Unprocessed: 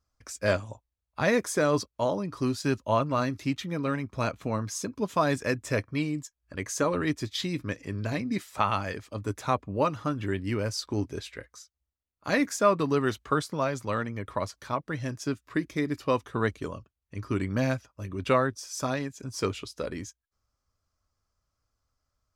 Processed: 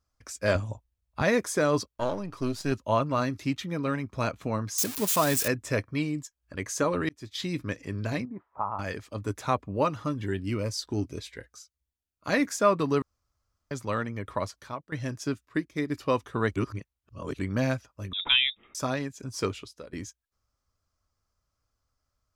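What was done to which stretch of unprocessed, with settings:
0:00.55–0:01.22: low-shelf EQ 230 Hz +9 dB
0:01.94–0:02.72: gain on one half-wave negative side −7 dB
0:04.78–0:05.48: spike at every zero crossing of −20 dBFS
0:07.09–0:07.50: fade in
0:08.25–0:08.79: transistor ladder low-pass 1,100 Hz, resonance 60%
0:10.05–0:12.27: phaser whose notches keep moving one way falling 1.8 Hz
0:13.02–0:13.71: fill with room tone
0:14.46–0:14.92: fade out, to −17 dB
0:15.45–0:15.90: expander for the loud parts, over −44 dBFS
0:16.56–0:17.39: reverse
0:18.13–0:18.75: voice inversion scrambler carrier 3,700 Hz
0:19.42–0:19.93: fade out, to −19 dB

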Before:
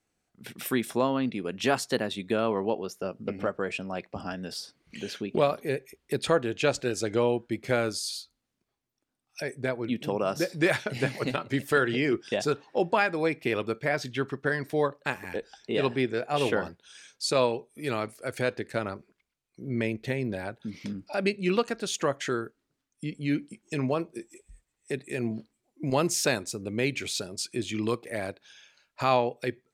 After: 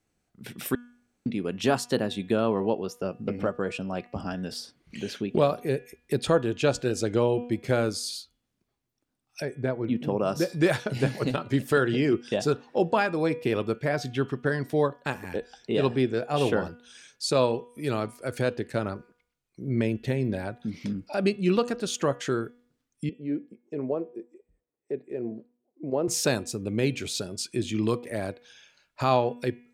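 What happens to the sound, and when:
0:00.75–0:01.26: fill with room tone
0:09.45–0:10.23: high-shelf EQ 3,100 Hz −11.5 dB
0:23.09–0:26.08: resonant band-pass 460 Hz, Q 1.6
whole clip: low-shelf EQ 330 Hz +6 dB; hum removal 242.4 Hz, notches 14; dynamic equaliser 2,100 Hz, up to −6 dB, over −45 dBFS, Q 2.7

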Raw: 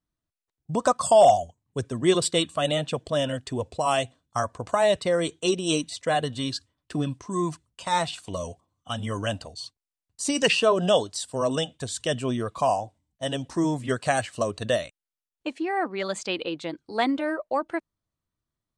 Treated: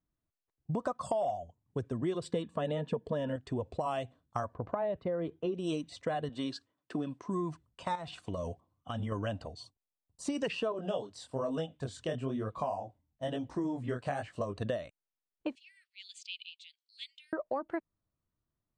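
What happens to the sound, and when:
0:02.31–0:03.36: hollow resonant body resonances 210/440/930/1,700 Hz, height 13 dB
0:04.54–0:05.55: head-to-tape spacing loss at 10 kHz 35 dB
0:06.29–0:07.27: high-pass filter 240 Hz
0:07.95–0:09.12: downward compressor, threshold −30 dBFS
0:09.63–0:10.22: drawn EQ curve 930 Hz 0 dB, 1,600 Hz −16 dB, 9,800 Hz +4 dB
0:10.72–0:14.57: chorus effect 1.1 Hz, delay 18.5 ms, depth 6.6 ms
0:15.55–0:17.33: Butterworth high-pass 2,700 Hz 48 dB per octave
whole clip: low-pass filter 1,200 Hz 6 dB per octave; downward compressor 6 to 1, threshold −31 dBFS

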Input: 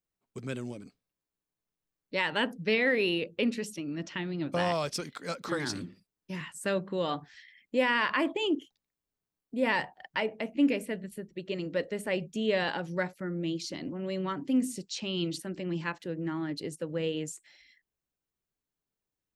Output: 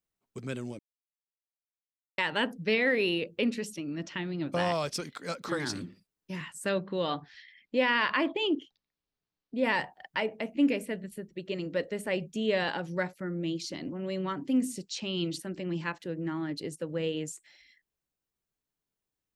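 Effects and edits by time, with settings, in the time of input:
0:00.79–0:02.18: silence
0:06.69–0:09.64: high shelf with overshoot 6,400 Hz −11.5 dB, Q 1.5

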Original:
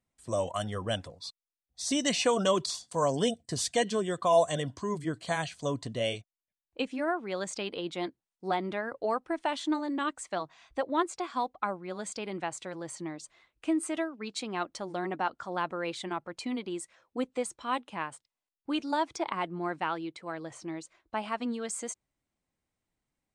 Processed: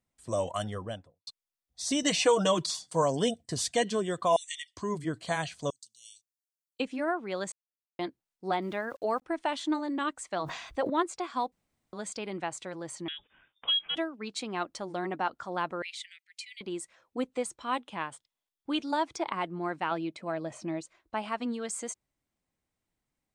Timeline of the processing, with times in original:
0:00.58–0:01.27: fade out and dull
0:02.02–0:03.02: comb filter 6.4 ms
0:04.36–0:04.77: linear-phase brick-wall band-pass 1,800–10,000 Hz
0:05.70–0:06.80: inverse Chebyshev high-pass filter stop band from 2,000 Hz, stop band 50 dB
0:07.52–0:07.99: silence
0:08.62–0:09.22: centre clipping without the shift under −55 dBFS
0:10.34–0:10.90: level that may fall only so fast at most 56 dB per second
0:11.52–0:11.93: fill with room tone
0:13.08–0:13.96: voice inversion scrambler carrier 3,600 Hz
0:15.82–0:16.61: Butterworth high-pass 1,900 Hz 72 dB per octave
0:17.83–0:18.91: parametric band 3,400 Hz +8 dB 0.21 octaves
0:19.91–0:20.81: hollow resonant body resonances 220/610/2,500 Hz, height 11 dB, ringing for 35 ms

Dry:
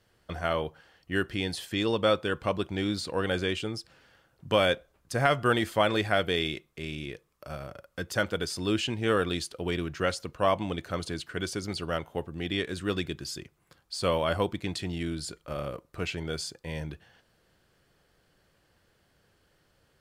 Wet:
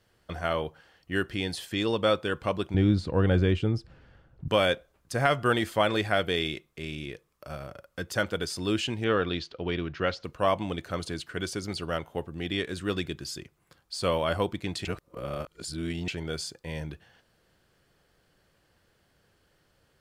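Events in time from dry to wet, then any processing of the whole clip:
0:02.74–0:04.48: RIAA equalisation playback
0:09.04–0:10.24: low-pass filter 4,700 Hz 24 dB per octave
0:14.85–0:16.08: reverse

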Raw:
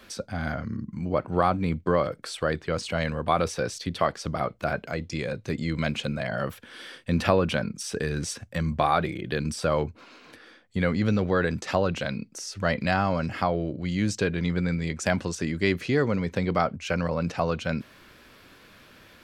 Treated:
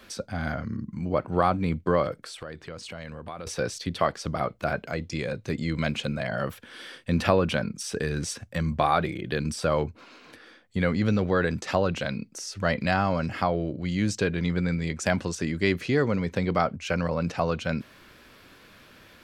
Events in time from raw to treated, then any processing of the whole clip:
0:02.19–0:03.47: downward compressor 3 to 1, threshold −38 dBFS

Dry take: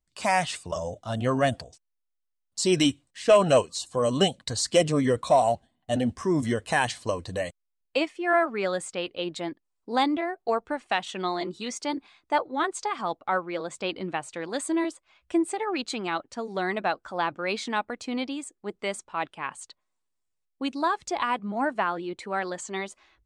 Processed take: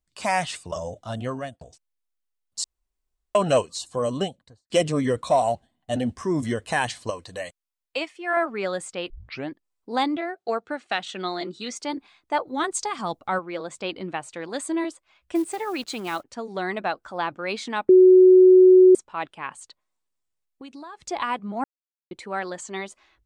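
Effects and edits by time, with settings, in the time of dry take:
0:01.06–0:01.61: fade out
0:02.64–0:03.35: fill with room tone
0:03.90–0:04.70: fade out and dull
0:07.10–0:08.37: low-shelf EQ 430 Hz −10 dB
0:09.10: tape start 0.40 s
0:10.16–0:11.75: loudspeaker in its box 120–9,000 Hz, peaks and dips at 990 Hz −7 dB, 1,400 Hz +4 dB, 4,000 Hz +4 dB
0:12.47–0:13.39: bass and treble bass +8 dB, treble +9 dB
0:15.35–0:16.24: one scale factor per block 5 bits
0:17.89–0:18.95: beep over 370 Hz −8.5 dBFS
0:19.57–0:21.07: downward compressor, threshold −38 dBFS
0:21.64–0:22.11: silence

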